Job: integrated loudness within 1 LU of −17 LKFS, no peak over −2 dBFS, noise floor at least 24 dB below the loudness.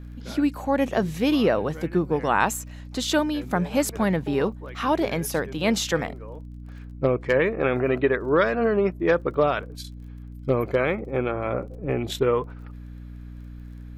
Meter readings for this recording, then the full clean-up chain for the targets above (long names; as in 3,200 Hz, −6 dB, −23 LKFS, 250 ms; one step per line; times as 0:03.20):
crackle rate 28 per second; mains hum 60 Hz; hum harmonics up to 300 Hz; level of the hum −36 dBFS; integrated loudness −24.5 LKFS; sample peak −5.5 dBFS; target loudness −17.0 LKFS
→ click removal
hum removal 60 Hz, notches 5
level +7.5 dB
brickwall limiter −2 dBFS